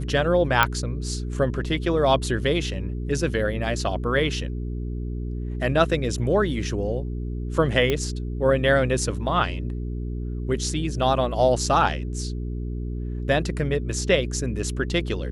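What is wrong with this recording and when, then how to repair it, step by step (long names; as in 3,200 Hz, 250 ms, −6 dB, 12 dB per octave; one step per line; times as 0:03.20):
mains hum 60 Hz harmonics 7 −29 dBFS
0:00.63: click −4 dBFS
0:07.90: click −10 dBFS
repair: click removal
hum removal 60 Hz, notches 7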